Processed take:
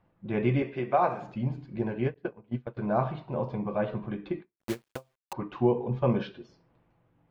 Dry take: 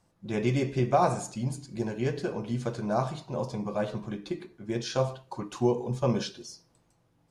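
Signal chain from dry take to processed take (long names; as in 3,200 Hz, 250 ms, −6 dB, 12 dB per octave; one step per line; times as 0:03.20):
0:00.62–0:01.22: high-pass filter 500 Hz 6 dB per octave
0:02.14–0:02.77: noise gate −29 dBFS, range −25 dB
low-pass filter 2,800 Hz 24 dB per octave
0:04.56–0:05.33: bit-depth reduction 6 bits, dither none
every ending faded ahead of time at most 420 dB per second
level +1 dB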